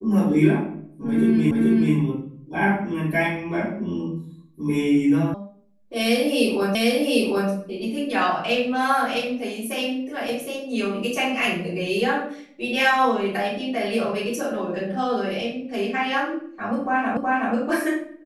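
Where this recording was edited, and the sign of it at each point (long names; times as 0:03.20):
0:01.51: the same again, the last 0.43 s
0:05.34: cut off before it has died away
0:06.75: the same again, the last 0.75 s
0:17.17: the same again, the last 0.37 s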